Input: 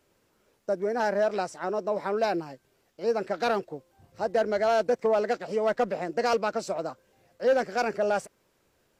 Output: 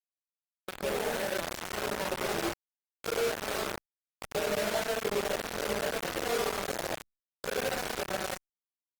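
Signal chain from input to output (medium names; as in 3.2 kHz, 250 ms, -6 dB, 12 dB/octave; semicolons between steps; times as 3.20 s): pitch shift switched off and on -1.5 st, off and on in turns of 373 ms; peak limiter -21 dBFS, peak gain reduction 4 dB; on a send: early reflections 24 ms -4.5 dB, 67 ms -3 dB; on the sum: compression 2:1, threshold -42 dBFS, peak gain reduction 12 dB; peaking EQ 1.9 kHz +2.5 dB 1.3 oct; gated-style reverb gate 170 ms rising, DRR -2.5 dB; crossover distortion -55.5 dBFS; hum notches 60/120/180 Hz; bit crusher 5-bit; trim -1.5 dB; Opus 20 kbps 48 kHz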